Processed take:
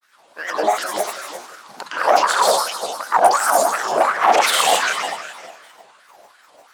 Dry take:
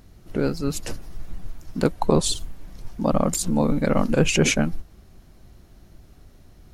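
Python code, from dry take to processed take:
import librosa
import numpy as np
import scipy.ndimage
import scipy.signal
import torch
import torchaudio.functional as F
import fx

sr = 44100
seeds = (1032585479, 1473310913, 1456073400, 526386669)

p1 = fx.rev_plate(x, sr, seeds[0], rt60_s=1.7, hf_ratio=0.9, predelay_ms=105, drr_db=-7.0)
p2 = fx.granulator(p1, sr, seeds[1], grain_ms=100.0, per_s=20.0, spray_ms=100.0, spread_st=7)
p3 = fx.fold_sine(p2, sr, drive_db=4, ceiling_db=-5.0)
p4 = fx.filter_lfo_highpass(p3, sr, shape='sine', hz=2.7, low_hz=680.0, high_hz=1500.0, q=4.3)
p5 = p4 + fx.echo_feedback(p4, sr, ms=174, feedback_pct=52, wet_db=-18, dry=0)
p6 = fx.vibrato_shape(p5, sr, shape='square', rate_hz=3.0, depth_cents=100.0)
y = p6 * 10.0 ** (-6.0 / 20.0)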